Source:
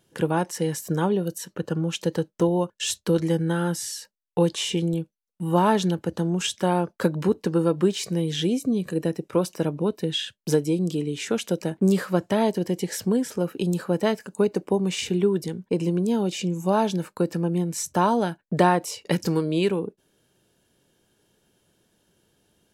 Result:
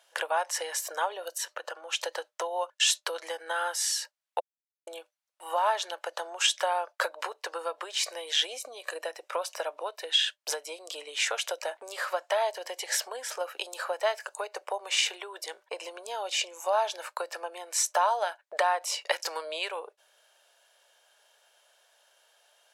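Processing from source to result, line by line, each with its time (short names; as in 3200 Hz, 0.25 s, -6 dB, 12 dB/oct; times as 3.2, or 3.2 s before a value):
1.29–2.02 compressor 2.5:1, threshold -32 dBFS
4.4–4.87 mute
whole clip: compressor 6:1, threshold -25 dBFS; elliptic high-pass 600 Hz, stop band 70 dB; high shelf 11000 Hz -10 dB; gain +7.5 dB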